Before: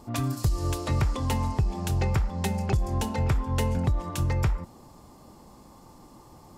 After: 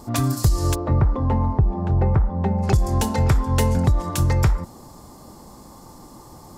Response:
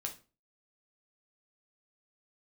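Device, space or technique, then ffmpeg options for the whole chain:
exciter from parts: -filter_complex "[0:a]asplit=2[a][b];[b]highpass=f=2.5k:w=0.5412,highpass=f=2.5k:w=1.3066,asoftclip=type=tanh:threshold=-36.5dB,volume=-4dB[c];[a][c]amix=inputs=2:normalize=0,asplit=3[d][e][f];[d]afade=t=out:st=0.74:d=0.02[g];[e]lowpass=1.1k,afade=t=in:st=0.74:d=0.02,afade=t=out:st=2.62:d=0.02[h];[f]afade=t=in:st=2.62:d=0.02[i];[g][h][i]amix=inputs=3:normalize=0,volume=7dB"

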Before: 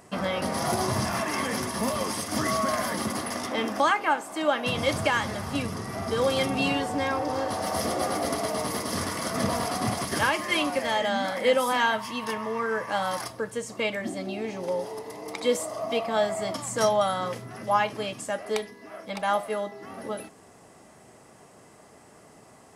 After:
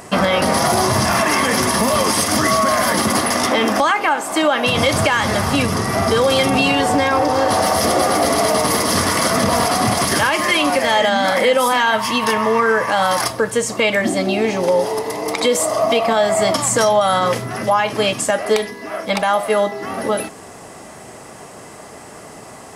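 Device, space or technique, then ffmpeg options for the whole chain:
mastering chain: -af "equalizer=f=160:t=o:w=3:g=-3,acompressor=threshold=-27dB:ratio=2.5,asoftclip=type=hard:threshold=-18.5dB,alimiter=level_in=22dB:limit=-1dB:release=50:level=0:latency=1,volume=-5.5dB"

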